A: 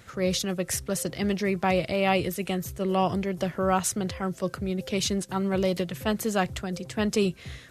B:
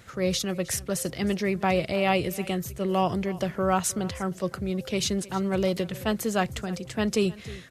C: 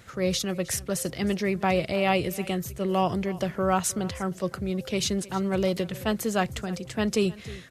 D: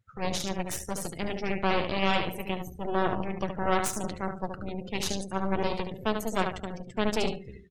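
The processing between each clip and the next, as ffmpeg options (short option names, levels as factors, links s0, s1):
-af "aecho=1:1:312:0.106"
-af anull
-af "aecho=1:1:72|144|216|288|360:0.562|0.214|0.0812|0.0309|0.0117,aeval=exprs='0.355*(cos(1*acos(clip(val(0)/0.355,-1,1)))-cos(1*PI/2))+0.0355*(cos(3*acos(clip(val(0)/0.355,-1,1)))-cos(3*PI/2))+0.0891*(cos(4*acos(clip(val(0)/0.355,-1,1)))-cos(4*PI/2))+0.02*(cos(8*acos(clip(val(0)/0.355,-1,1)))-cos(8*PI/2))':c=same,afftdn=nr=26:nf=-39,volume=0.631"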